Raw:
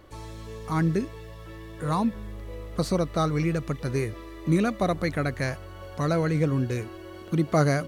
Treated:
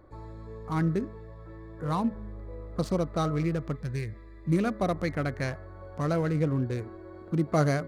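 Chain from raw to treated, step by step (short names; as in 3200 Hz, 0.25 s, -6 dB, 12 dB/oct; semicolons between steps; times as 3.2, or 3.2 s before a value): Wiener smoothing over 15 samples; spectral gain 3.76–4.52, 220–1500 Hz -9 dB; de-hum 213 Hz, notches 10; gain -2.5 dB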